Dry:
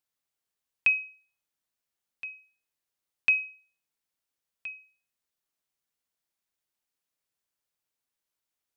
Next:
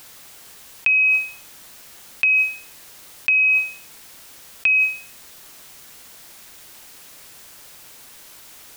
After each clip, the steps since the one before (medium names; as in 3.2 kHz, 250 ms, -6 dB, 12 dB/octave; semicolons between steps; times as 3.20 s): de-hum 91.56 Hz, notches 14; level flattener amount 100%; trim +3 dB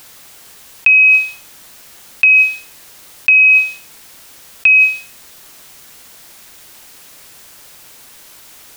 dynamic bell 3.6 kHz, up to +7 dB, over -32 dBFS, Q 0.9; trim +3.5 dB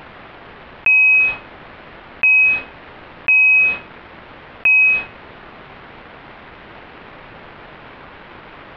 waveshaping leveller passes 5; Gaussian low-pass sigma 3.8 samples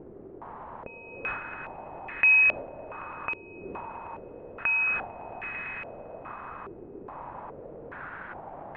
echo with a slow build-up 112 ms, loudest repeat 5, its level -14.5 dB; step-sequenced low-pass 2.4 Hz 390–1900 Hz; trim -8 dB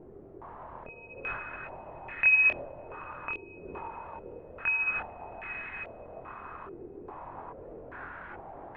chorus voices 6, 0.54 Hz, delay 24 ms, depth 1.7 ms